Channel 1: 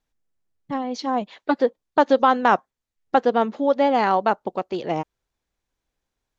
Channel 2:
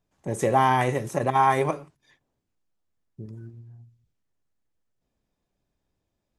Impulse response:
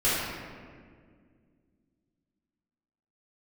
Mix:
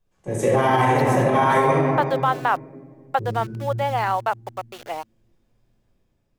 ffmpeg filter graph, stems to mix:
-filter_complex "[0:a]acrossover=split=550 4700:gain=0.0708 1 0.0631[a][b][c];[a][b][c]amix=inputs=3:normalize=0,aeval=exprs='val(0)*gte(abs(val(0)),0.0168)':c=same,volume=-1dB[d];[1:a]dynaudnorm=f=170:g=7:m=4dB,volume=-5.5dB,asplit=2[e][f];[f]volume=-4.5dB[g];[2:a]atrim=start_sample=2205[h];[g][h]afir=irnorm=-1:irlink=0[i];[d][e][i]amix=inputs=3:normalize=0,alimiter=limit=-9dB:level=0:latency=1:release=70"

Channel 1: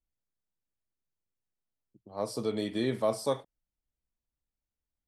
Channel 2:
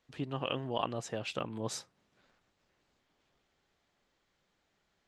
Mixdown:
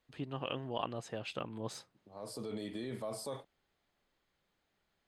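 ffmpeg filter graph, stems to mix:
-filter_complex "[0:a]alimiter=level_in=4.5dB:limit=-24dB:level=0:latency=1:release=32,volume=-4.5dB,volume=-3.5dB[a];[1:a]deesser=0.9,bandreject=f=7.2k:w=10,volume=-3.5dB,asplit=2[b][c];[c]apad=whole_len=223842[d];[a][d]sidechaincompress=threshold=-42dB:ratio=8:attack=9.5:release=875[e];[e][b]amix=inputs=2:normalize=0,bandreject=f=5.7k:w=8.4"

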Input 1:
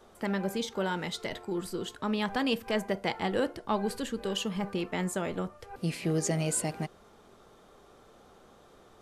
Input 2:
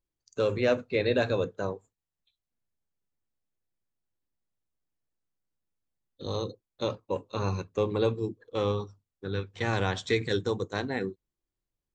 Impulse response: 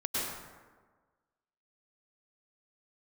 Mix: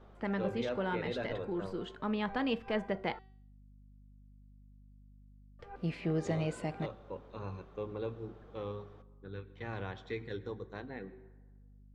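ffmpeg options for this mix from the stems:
-filter_complex "[0:a]volume=-3.5dB,asplit=3[a][b][c];[a]atrim=end=3.19,asetpts=PTS-STARTPTS,afade=t=out:st=3.186:d=0.004:c=hsin[d];[b]atrim=start=3.19:end=5.59,asetpts=PTS-STARTPTS,volume=0[e];[c]atrim=start=5.59,asetpts=PTS-STARTPTS,afade=t=in:d=0.004:c=hsin[f];[d][e][f]concat=n=3:v=0:a=1[g];[1:a]aeval=exprs='val(0)+0.00631*(sin(2*PI*50*n/s)+sin(2*PI*2*50*n/s)/2+sin(2*PI*3*50*n/s)/3+sin(2*PI*4*50*n/s)/4+sin(2*PI*5*50*n/s)/5)':c=same,volume=-13dB,asplit=2[h][i];[i]volume=-22.5dB[j];[2:a]atrim=start_sample=2205[k];[j][k]afir=irnorm=-1:irlink=0[l];[g][h][l]amix=inputs=3:normalize=0,lowpass=2.8k,bandreject=f=381.3:t=h:w=4,bandreject=f=762.6:t=h:w=4,bandreject=f=1.1439k:t=h:w=4,bandreject=f=1.5252k:t=h:w=4,bandreject=f=1.9065k:t=h:w=4,bandreject=f=2.2878k:t=h:w=4,bandreject=f=2.6691k:t=h:w=4,bandreject=f=3.0504k:t=h:w=4,bandreject=f=3.4317k:t=h:w=4,bandreject=f=3.813k:t=h:w=4,bandreject=f=4.1943k:t=h:w=4,bandreject=f=4.5756k:t=h:w=4,bandreject=f=4.9569k:t=h:w=4,bandreject=f=5.3382k:t=h:w=4,bandreject=f=5.7195k:t=h:w=4,bandreject=f=6.1008k:t=h:w=4,bandreject=f=6.4821k:t=h:w=4,bandreject=f=6.8634k:t=h:w=4,bandreject=f=7.2447k:t=h:w=4,bandreject=f=7.626k:t=h:w=4,bandreject=f=8.0073k:t=h:w=4,bandreject=f=8.3886k:t=h:w=4,bandreject=f=8.7699k:t=h:w=4,bandreject=f=9.1512k:t=h:w=4,bandreject=f=9.5325k:t=h:w=4,bandreject=f=9.9138k:t=h:w=4,bandreject=f=10.2951k:t=h:w=4,bandreject=f=10.6764k:t=h:w=4,bandreject=f=11.0577k:t=h:w=4,bandreject=f=11.439k:t=h:w=4,bandreject=f=11.8203k:t=h:w=4,bandreject=f=12.2016k:t=h:w=4,bandreject=f=12.5829k:t=h:w=4,bandreject=f=12.9642k:t=h:w=4,bandreject=f=13.3455k:t=h:w=4,bandreject=f=13.7268k:t=h:w=4,bandreject=f=14.1081k:t=h:w=4,bandreject=f=14.4894k:t=h:w=4,bandreject=f=14.8707k:t=h:w=4,bandreject=f=15.252k:t=h:w=4"

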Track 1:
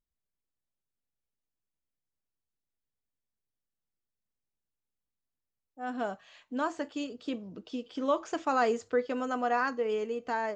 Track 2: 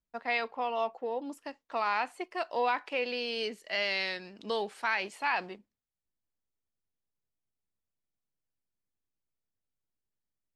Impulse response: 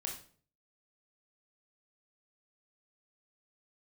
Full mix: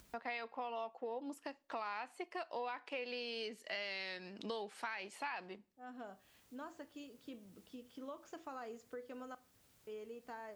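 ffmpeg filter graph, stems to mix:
-filter_complex "[0:a]acompressor=threshold=-29dB:ratio=6,volume=-16.5dB,asplit=3[a][b][c];[a]atrim=end=9.35,asetpts=PTS-STARTPTS,afade=t=out:st=9.346:d=0.004:c=hsin[d];[b]atrim=start=9.35:end=9.87,asetpts=PTS-STARTPTS,volume=0[e];[c]atrim=start=9.87,asetpts=PTS-STARTPTS,afade=t=in:d=0.004:c=hsin[f];[d][e][f]concat=n=3:v=0:a=1,asplit=3[g][h][i];[h]volume=-11dB[j];[1:a]acompressor=mode=upward:threshold=-36dB:ratio=2.5,highpass=48,volume=-4dB,asplit=2[k][l];[l]volume=-23dB[m];[i]apad=whole_len=465608[n];[k][n]sidechaincompress=threshold=-52dB:ratio=8:attack=24:release=523[o];[2:a]atrim=start_sample=2205[p];[j][m]amix=inputs=2:normalize=0[q];[q][p]afir=irnorm=-1:irlink=0[r];[g][o][r]amix=inputs=3:normalize=0,acompressor=threshold=-39dB:ratio=6"

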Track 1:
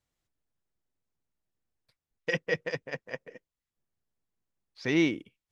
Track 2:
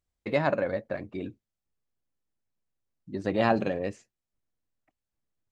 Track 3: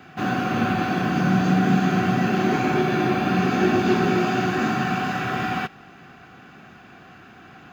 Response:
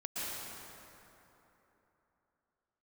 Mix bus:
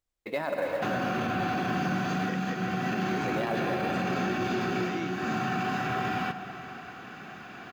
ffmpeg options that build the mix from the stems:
-filter_complex "[0:a]volume=-12.5dB,asplit=2[a][b];[1:a]equalizer=f=120:t=o:w=1.6:g=-15,acrusher=bits=7:mode=log:mix=0:aa=0.000001,volume=-3.5dB,asplit=2[c][d];[d]volume=-6dB[e];[2:a]lowshelf=f=190:g=-8.5,acrossover=split=150|990[f][g][h];[f]acompressor=threshold=-38dB:ratio=4[i];[g]acompressor=threshold=-34dB:ratio=4[j];[h]acompressor=threshold=-38dB:ratio=4[k];[i][j][k]amix=inputs=3:normalize=0,adelay=650,volume=2dB,asplit=2[l][m];[m]volume=-13dB[n];[b]apad=whole_len=369182[o];[l][o]sidechaincompress=threshold=-41dB:ratio=8:attack=10:release=390[p];[3:a]atrim=start_sample=2205[q];[e][n]amix=inputs=2:normalize=0[r];[r][q]afir=irnorm=-1:irlink=0[s];[a][c][p][s]amix=inputs=4:normalize=0,alimiter=limit=-20.5dB:level=0:latency=1:release=21"

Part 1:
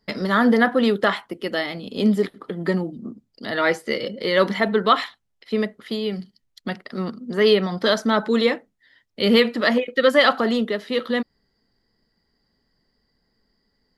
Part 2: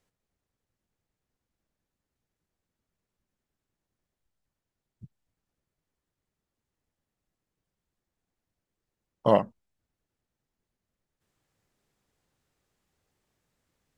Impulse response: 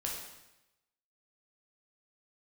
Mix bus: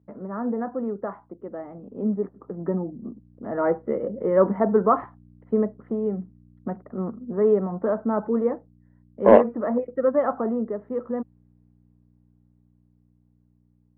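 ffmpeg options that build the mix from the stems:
-filter_complex "[0:a]lowpass=f=1.1k:w=0.5412,lowpass=f=1.1k:w=1.3066,aeval=exprs='val(0)+0.00447*(sin(2*PI*60*n/s)+sin(2*PI*2*60*n/s)/2+sin(2*PI*3*60*n/s)/3+sin(2*PI*4*60*n/s)/4+sin(2*PI*5*60*n/s)/5)':c=same,highpass=96,volume=-10dB[a];[1:a]afwtdn=0.00891,lowshelf=f=250:t=q:w=3:g=-14,asoftclip=type=tanh:threshold=-9dB,volume=0dB[b];[a][b]amix=inputs=2:normalize=0,dynaudnorm=f=530:g=11:m=11.5dB,lowpass=2.3k"

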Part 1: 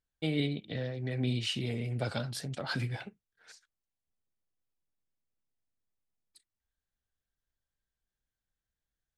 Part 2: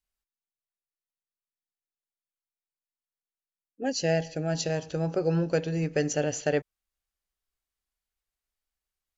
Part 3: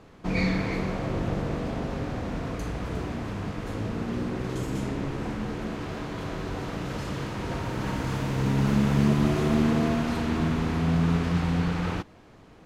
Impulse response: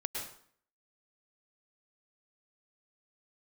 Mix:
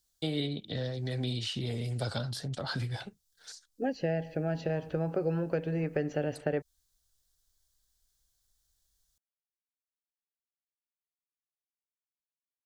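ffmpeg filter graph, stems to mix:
-filter_complex "[0:a]asubboost=boost=3:cutoff=120,aexciter=amount=14.4:drive=4:freq=3.6k,volume=2dB[a];[1:a]lowpass=2.2k,volume=2.5dB[b];[a][b]amix=inputs=2:normalize=0,highshelf=f=5.9k:g=-11,acrossover=split=430|2400[c][d][e];[c]acompressor=threshold=-32dB:ratio=4[f];[d]acompressor=threshold=-34dB:ratio=4[g];[e]acompressor=threshold=-49dB:ratio=4[h];[f][g][h]amix=inputs=3:normalize=0"

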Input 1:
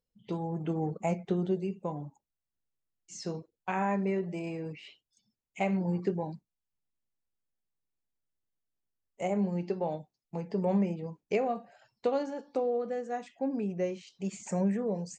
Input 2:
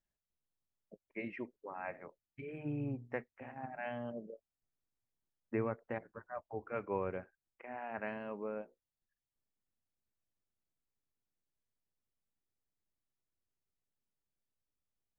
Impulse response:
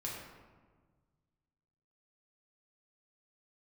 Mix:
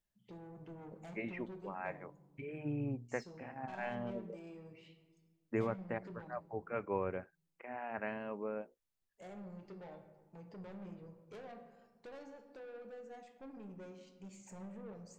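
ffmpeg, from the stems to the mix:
-filter_complex "[0:a]asoftclip=type=tanh:threshold=-34dB,volume=-17dB,asplit=2[a][b];[b]volume=-3dB[c];[1:a]volume=0.5dB[d];[2:a]atrim=start_sample=2205[e];[c][e]afir=irnorm=-1:irlink=0[f];[a][d][f]amix=inputs=3:normalize=0"

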